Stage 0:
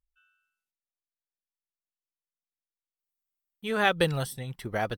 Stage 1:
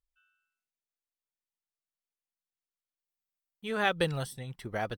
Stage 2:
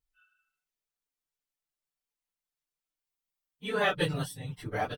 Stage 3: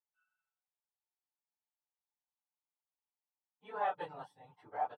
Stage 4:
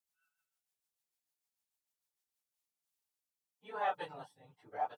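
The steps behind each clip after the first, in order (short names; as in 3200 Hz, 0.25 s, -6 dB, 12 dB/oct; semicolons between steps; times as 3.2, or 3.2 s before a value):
bell 13000 Hz -7 dB 0.33 oct; gain -4 dB
phase scrambler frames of 50 ms; comb 6.8 ms, depth 59%
band-pass 850 Hz, Q 5.5; gain +3 dB
rotary speaker horn 6.7 Hz, later 0.9 Hz, at 2.12; high shelf 3700 Hz +9.5 dB; gain +1.5 dB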